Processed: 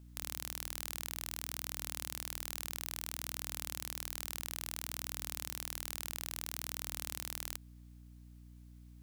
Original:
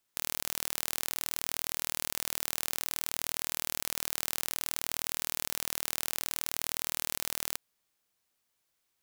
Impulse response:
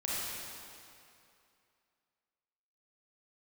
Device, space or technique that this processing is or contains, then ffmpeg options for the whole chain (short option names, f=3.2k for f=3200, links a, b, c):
valve amplifier with mains hum: -af "aeval=exprs='(tanh(3.98*val(0)+0.75)-tanh(0.75))/3.98':c=same,aeval=exprs='val(0)+0.000794*(sin(2*PI*60*n/s)+sin(2*PI*2*60*n/s)/2+sin(2*PI*3*60*n/s)/3+sin(2*PI*4*60*n/s)/4+sin(2*PI*5*60*n/s)/5)':c=same,volume=8.5dB"